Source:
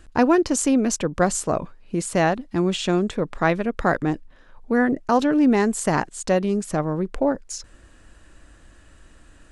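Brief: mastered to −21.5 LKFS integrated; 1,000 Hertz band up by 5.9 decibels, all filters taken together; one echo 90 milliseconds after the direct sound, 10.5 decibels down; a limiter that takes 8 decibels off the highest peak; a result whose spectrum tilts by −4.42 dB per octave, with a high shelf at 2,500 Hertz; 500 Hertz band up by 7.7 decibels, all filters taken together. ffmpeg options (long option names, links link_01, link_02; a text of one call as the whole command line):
ffmpeg -i in.wav -af "equalizer=frequency=500:width_type=o:gain=8.5,equalizer=frequency=1000:width_type=o:gain=5.5,highshelf=frequency=2500:gain=-8.5,alimiter=limit=-8dB:level=0:latency=1,aecho=1:1:90:0.299,volume=-2.5dB" out.wav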